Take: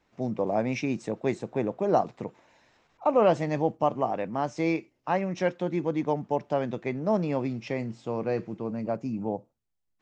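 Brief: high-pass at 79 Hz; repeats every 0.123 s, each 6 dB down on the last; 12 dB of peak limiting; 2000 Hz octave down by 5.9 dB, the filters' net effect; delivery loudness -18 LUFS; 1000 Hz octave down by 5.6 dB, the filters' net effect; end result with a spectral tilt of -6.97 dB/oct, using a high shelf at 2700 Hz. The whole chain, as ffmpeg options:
-af "highpass=79,equalizer=f=1k:t=o:g=-7.5,equalizer=f=2k:t=o:g=-8,highshelf=f=2.7k:g=5.5,alimiter=level_in=0.5dB:limit=-24dB:level=0:latency=1,volume=-0.5dB,aecho=1:1:123|246|369|492|615|738:0.501|0.251|0.125|0.0626|0.0313|0.0157,volume=16dB"

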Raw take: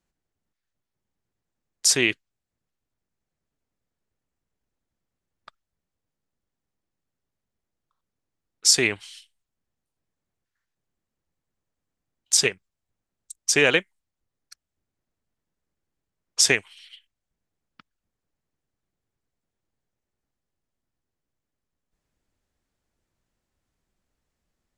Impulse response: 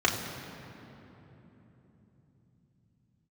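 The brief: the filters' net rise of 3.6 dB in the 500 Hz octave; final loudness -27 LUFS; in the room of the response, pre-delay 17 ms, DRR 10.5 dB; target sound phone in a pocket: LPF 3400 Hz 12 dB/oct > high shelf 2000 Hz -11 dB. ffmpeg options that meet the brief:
-filter_complex "[0:a]equalizer=f=500:t=o:g=5,asplit=2[a][b];[1:a]atrim=start_sample=2205,adelay=17[c];[b][c]afir=irnorm=-1:irlink=0,volume=-24.5dB[d];[a][d]amix=inputs=2:normalize=0,lowpass=3.4k,highshelf=f=2k:g=-11"

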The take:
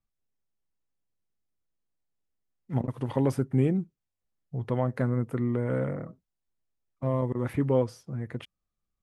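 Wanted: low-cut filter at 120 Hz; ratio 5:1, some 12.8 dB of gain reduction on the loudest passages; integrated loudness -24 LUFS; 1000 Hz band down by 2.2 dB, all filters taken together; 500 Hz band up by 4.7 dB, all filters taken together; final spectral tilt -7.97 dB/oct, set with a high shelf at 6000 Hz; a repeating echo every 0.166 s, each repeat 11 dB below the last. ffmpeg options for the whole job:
-af "highpass=120,equalizer=f=500:t=o:g=6.5,equalizer=f=1k:t=o:g=-5,highshelf=f=6k:g=-3.5,acompressor=threshold=-30dB:ratio=5,aecho=1:1:166|332|498:0.282|0.0789|0.0221,volume=11.5dB"

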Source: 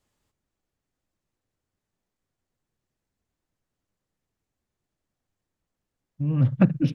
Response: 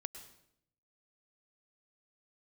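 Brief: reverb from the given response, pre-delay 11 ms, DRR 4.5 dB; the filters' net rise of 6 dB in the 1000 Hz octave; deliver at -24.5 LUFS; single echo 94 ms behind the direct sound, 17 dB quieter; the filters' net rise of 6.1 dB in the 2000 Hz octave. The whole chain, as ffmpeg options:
-filter_complex "[0:a]equalizer=f=1k:t=o:g=6.5,equalizer=f=2k:t=o:g=6,aecho=1:1:94:0.141,asplit=2[a][b];[1:a]atrim=start_sample=2205,adelay=11[c];[b][c]afir=irnorm=-1:irlink=0,volume=-2dB[d];[a][d]amix=inputs=2:normalize=0,volume=-3dB"

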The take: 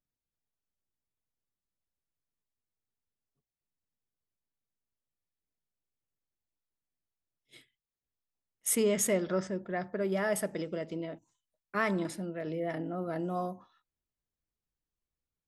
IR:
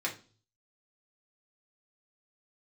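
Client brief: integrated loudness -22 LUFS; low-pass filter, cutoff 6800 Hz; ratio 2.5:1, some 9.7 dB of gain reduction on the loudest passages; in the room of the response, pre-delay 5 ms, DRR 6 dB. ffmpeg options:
-filter_complex "[0:a]lowpass=6.8k,acompressor=threshold=-39dB:ratio=2.5,asplit=2[a][b];[1:a]atrim=start_sample=2205,adelay=5[c];[b][c]afir=irnorm=-1:irlink=0,volume=-11.5dB[d];[a][d]amix=inputs=2:normalize=0,volume=18dB"

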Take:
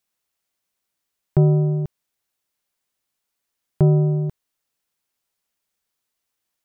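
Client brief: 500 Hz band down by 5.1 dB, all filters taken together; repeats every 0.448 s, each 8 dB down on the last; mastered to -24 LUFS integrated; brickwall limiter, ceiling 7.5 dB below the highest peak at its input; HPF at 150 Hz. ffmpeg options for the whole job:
-af "highpass=150,equalizer=f=500:t=o:g=-8,alimiter=limit=-17.5dB:level=0:latency=1,aecho=1:1:448|896|1344|1792|2240:0.398|0.159|0.0637|0.0255|0.0102,volume=4.5dB"

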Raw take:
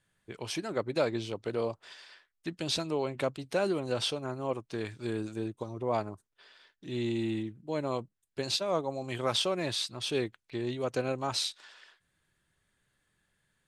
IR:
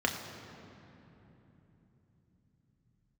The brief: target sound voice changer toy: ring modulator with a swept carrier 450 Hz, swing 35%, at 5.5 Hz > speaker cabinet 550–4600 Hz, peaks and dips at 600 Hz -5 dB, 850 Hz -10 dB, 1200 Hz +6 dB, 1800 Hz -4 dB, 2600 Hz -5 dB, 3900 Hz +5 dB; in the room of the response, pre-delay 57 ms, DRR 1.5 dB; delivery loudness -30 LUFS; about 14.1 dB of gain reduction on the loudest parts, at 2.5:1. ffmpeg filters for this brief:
-filter_complex "[0:a]acompressor=threshold=-47dB:ratio=2.5,asplit=2[a][b];[1:a]atrim=start_sample=2205,adelay=57[c];[b][c]afir=irnorm=-1:irlink=0,volume=-10.5dB[d];[a][d]amix=inputs=2:normalize=0,aeval=exprs='val(0)*sin(2*PI*450*n/s+450*0.35/5.5*sin(2*PI*5.5*n/s))':c=same,highpass=550,equalizer=f=600:t=q:w=4:g=-5,equalizer=f=850:t=q:w=4:g=-10,equalizer=f=1.2k:t=q:w=4:g=6,equalizer=f=1.8k:t=q:w=4:g=-4,equalizer=f=2.6k:t=q:w=4:g=-5,equalizer=f=3.9k:t=q:w=4:g=5,lowpass=f=4.6k:w=0.5412,lowpass=f=4.6k:w=1.3066,volume=20dB"

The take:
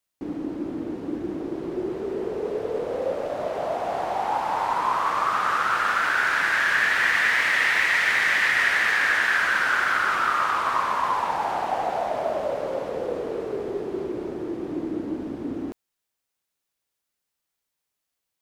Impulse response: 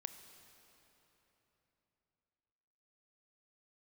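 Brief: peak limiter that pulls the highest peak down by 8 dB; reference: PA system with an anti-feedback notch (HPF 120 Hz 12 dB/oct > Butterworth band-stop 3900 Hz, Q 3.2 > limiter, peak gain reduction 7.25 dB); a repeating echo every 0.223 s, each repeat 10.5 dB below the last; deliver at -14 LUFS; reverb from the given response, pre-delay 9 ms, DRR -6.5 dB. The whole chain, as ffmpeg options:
-filter_complex "[0:a]alimiter=limit=-16.5dB:level=0:latency=1,aecho=1:1:223|446|669:0.299|0.0896|0.0269,asplit=2[a][b];[1:a]atrim=start_sample=2205,adelay=9[c];[b][c]afir=irnorm=-1:irlink=0,volume=10dB[d];[a][d]amix=inputs=2:normalize=0,highpass=120,asuperstop=centerf=3900:order=8:qfactor=3.2,volume=7.5dB,alimiter=limit=-5.5dB:level=0:latency=1"

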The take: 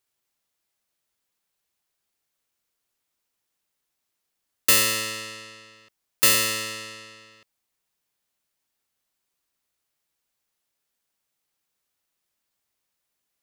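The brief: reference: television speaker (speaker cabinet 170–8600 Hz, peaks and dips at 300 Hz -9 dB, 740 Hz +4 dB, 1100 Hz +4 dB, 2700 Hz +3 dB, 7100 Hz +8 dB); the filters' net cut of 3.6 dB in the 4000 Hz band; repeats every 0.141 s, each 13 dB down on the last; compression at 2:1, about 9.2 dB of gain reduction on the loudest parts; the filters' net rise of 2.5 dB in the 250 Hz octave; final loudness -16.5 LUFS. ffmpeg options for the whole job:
-af "equalizer=f=250:t=o:g=7,equalizer=f=4k:t=o:g=-6.5,acompressor=threshold=-31dB:ratio=2,highpass=f=170:w=0.5412,highpass=f=170:w=1.3066,equalizer=f=300:t=q:w=4:g=-9,equalizer=f=740:t=q:w=4:g=4,equalizer=f=1.1k:t=q:w=4:g=4,equalizer=f=2.7k:t=q:w=4:g=3,equalizer=f=7.1k:t=q:w=4:g=8,lowpass=f=8.6k:w=0.5412,lowpass=f=8.6k:w=1.3066,aecho=1:1:141|282|423:0.224|0.0493|0.0108,volume=15dB"

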